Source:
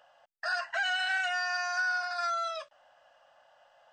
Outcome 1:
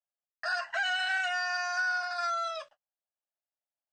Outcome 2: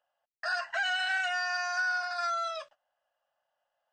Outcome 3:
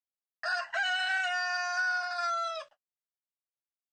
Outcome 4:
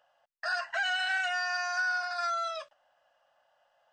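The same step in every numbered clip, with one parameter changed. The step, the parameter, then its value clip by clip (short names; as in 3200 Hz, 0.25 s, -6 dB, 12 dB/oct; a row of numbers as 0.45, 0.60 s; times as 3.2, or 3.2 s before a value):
gate, range: -43, -20, -55, -8 dB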